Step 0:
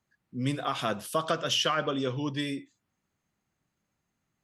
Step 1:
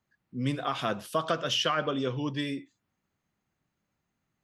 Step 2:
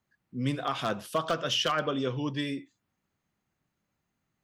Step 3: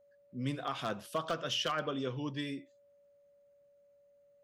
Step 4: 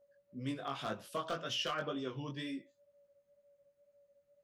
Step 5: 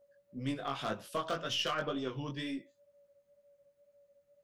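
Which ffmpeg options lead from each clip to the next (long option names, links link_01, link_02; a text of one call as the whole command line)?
ffmpeg -i in.wav -af "equalizer=frequency=9700:width_type=o:width=1.3:gain=-6.5" out.wav
ffmpeg -i in.wav -af "aeval=exprs='0.126*(abs(mod(val(0)/0.126+3,4)-2)-1)':channel_layout=same" out.wav
ffmpeg -i in.wav -af "aeval=exprs='val(0)+0.00141*sin(2*PI*570*n/s)':channel_layout=same,volume=-6dB" out.wav
ffmpeg -i in.wav -af "flanger=delay=17.5:depth=4.4:speed=2" out.wav
ffmpeg -i in.wav -af "aeval=exprs='0.0596*(cos(1*acos(clip(val(0)/0.0596,-1,1)))-cos(1*PI/2))+0.00168*(cos(6*acos(clip(val(0)/0.0596,-1,1)))-cos(6*PI/2))+0.000422*(cos(7*acos(clip(val(0)/0.0596,-1,1)))-cos(7*PI/2))':channel_layout=same,volume=3dB" out.wav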